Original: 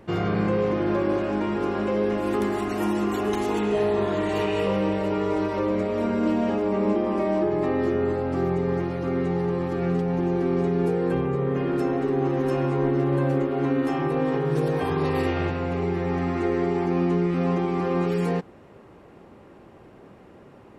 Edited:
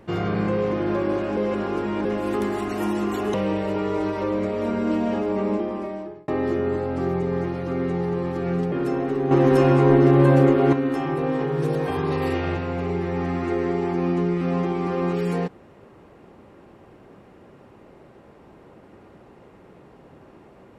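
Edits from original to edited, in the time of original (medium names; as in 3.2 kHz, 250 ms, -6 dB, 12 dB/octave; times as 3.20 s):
1.37–2.05 s: reverse
3.34–4.70 s: delete
6.77–7.64 s: fade out
10.08–11.65 s: delete
12.24–13.66 s: gain +7.5 dB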